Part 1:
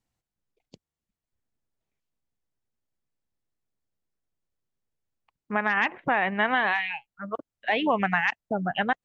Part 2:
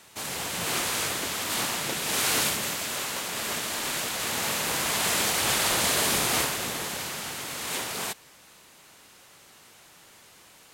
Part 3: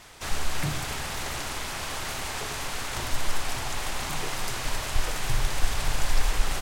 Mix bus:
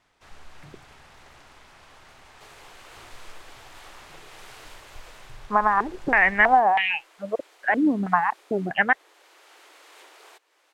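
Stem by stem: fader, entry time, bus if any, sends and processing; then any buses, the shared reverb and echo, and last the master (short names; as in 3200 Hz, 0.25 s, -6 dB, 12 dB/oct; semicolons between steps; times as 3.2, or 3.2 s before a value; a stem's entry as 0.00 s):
+2.5 dB, 0.00 s, no send, stepped low-pass 3.1 Hz 280–2900 Hz
-6.0 dB, 2.25 s, no send, steep high-pass 300 Hz 96 dB/oct; compressor 2:1, threshold -43 dBFS, peak gain reduction 11.5 dB; auto duck -9 dB, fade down 0.35 s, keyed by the first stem
-14.5 dB, 0.00 s, no send, dry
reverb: off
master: LPF 2300 Hz 6 dB/oct; low shelf 440 Hz -5 dB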